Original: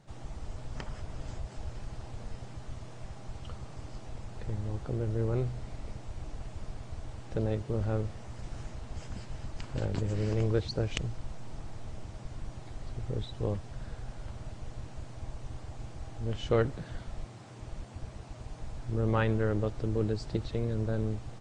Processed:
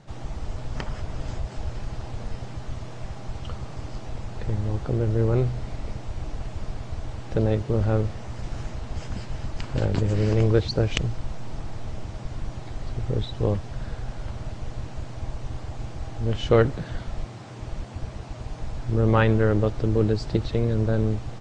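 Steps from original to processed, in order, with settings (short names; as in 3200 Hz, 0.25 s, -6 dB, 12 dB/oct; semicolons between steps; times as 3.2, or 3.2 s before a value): LPF 7000 Hz 12 dB/oct; gain +8.5 dB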